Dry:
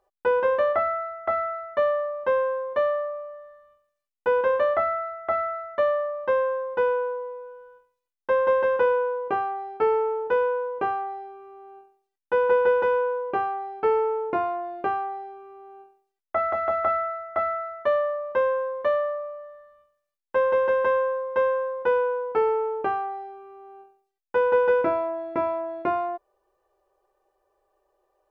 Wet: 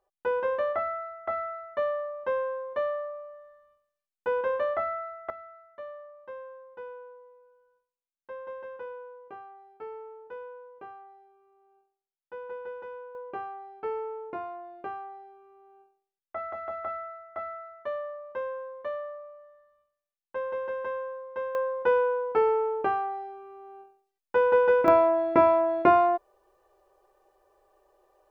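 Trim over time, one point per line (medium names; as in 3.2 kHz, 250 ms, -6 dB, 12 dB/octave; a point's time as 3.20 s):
-6 dB
from 5.30 s -19 dB
from 13.15 s -11 dB
from 21.55 s -1 dB
from 24.88 s +6 dB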